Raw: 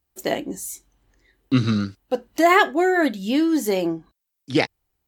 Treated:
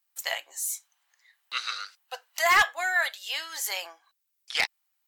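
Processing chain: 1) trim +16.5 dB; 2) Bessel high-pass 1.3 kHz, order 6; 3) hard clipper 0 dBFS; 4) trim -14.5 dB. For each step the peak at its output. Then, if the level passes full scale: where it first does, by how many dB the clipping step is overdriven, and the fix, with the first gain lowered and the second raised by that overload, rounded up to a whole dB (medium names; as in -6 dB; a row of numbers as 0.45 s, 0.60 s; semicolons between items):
+13.0 dBFS, +9.5 dBFS, 0.0 dBFS, -14.5 dBFS; step 1, 9.5 dB; step 1 +6.5 dB, step 4 -4.5 dB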